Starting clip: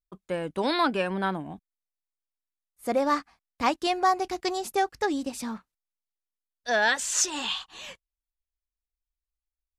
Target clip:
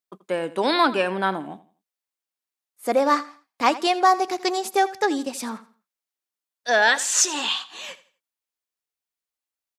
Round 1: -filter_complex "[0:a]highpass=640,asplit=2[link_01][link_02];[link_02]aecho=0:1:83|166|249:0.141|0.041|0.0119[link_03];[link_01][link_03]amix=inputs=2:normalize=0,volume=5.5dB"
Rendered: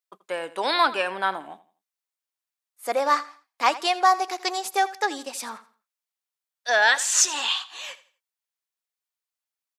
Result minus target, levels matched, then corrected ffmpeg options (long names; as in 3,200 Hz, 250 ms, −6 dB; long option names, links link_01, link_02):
250 Hz band −10.0 dB
-filter_complex "[0:a]highpass=260,asplit=2[link_01][link_02];[link_02]aecho=0:1:83|166|249:0.141|0.041|0.0119[link_03];[link_01][link_03]amix=inputs=2:normalize=0,volume=5.5dB"